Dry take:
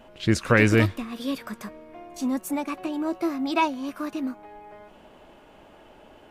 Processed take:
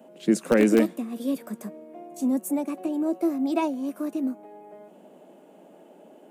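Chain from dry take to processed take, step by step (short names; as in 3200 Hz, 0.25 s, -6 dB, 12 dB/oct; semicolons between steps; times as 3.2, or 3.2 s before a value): steep high-pass 160 Hz 72 dB/oct; band shelf 2300 Hz -12 dB 2.9 oct; in parallel at -11 dB: wrapped overs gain 11 dB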